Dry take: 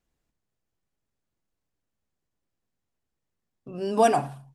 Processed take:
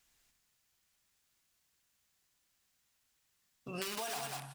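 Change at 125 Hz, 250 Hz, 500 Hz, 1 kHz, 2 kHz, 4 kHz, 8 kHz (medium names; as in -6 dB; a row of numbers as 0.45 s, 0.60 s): -12.0 dB, -17.5 dB, -20.0 dB, -18.5 dB, -7.5 dB, -1.0 dB, -3.0 dB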